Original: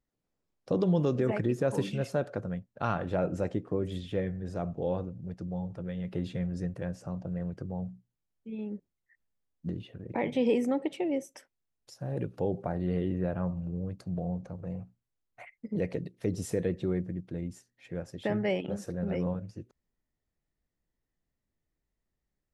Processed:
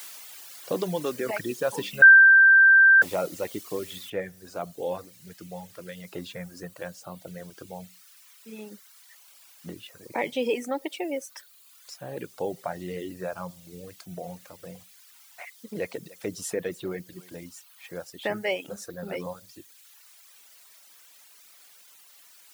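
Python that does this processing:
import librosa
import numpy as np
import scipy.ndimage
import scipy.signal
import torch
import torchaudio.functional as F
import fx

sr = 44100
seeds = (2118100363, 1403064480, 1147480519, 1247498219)

y = fx.noise_floor_step(x, sr, seeds[0], at_s=4.1, before_db=-50, after_db=-59, tilt_db=0.0)
y = fx.echo_single(y, sr, ms=294, db=-13.0, at=(15.43, 17.46))
y = fx.edit(y, sr, fx.bleep(start_s=2.02, length_s=1.0, hz=1570.0, db=-13.5), tone=tone)
y = fx.highpass(y, sr, hz=940.0, slope=6)
y = fx.dereverb_blind(y, sr, rt60_s=1.3)
y = y * librosa.db_to_amplitude(8.5)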